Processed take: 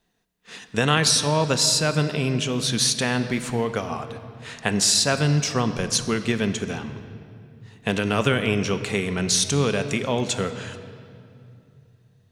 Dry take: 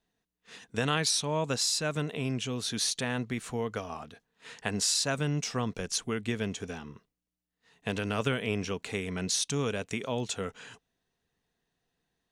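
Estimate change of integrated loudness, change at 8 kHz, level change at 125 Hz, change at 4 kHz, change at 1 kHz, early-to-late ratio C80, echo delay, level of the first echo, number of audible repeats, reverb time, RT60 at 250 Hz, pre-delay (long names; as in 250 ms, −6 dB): +9.0 dB, +8.5 dB, +10.0 dB, +9.0 dB, +9.0 dB, 11.5 dB, no echo audible, no echo audible, no echo audible, 2.6 s, 3.6 s, 5 ms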